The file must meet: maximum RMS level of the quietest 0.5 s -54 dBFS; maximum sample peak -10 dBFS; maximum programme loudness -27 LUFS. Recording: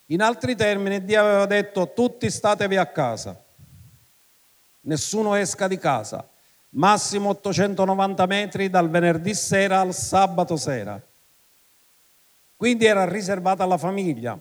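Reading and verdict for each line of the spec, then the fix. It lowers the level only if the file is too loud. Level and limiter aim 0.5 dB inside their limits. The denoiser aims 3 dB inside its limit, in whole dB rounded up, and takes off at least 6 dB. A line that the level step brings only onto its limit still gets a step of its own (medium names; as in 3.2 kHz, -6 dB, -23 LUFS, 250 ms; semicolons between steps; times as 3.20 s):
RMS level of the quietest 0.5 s -59 dBFS: pass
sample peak -5.0 dBFS: fail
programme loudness -21.5 LUFS: fail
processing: trim -6 dB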